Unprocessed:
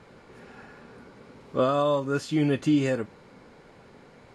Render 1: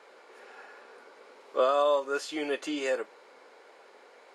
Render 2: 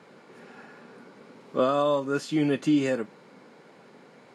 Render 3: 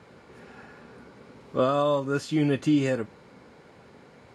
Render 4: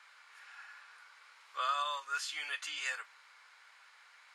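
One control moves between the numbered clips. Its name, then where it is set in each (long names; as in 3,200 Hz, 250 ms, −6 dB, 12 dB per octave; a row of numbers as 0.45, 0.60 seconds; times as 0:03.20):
high-pass filter, corner frequency: 420, 160, 51, 1,200 Hertz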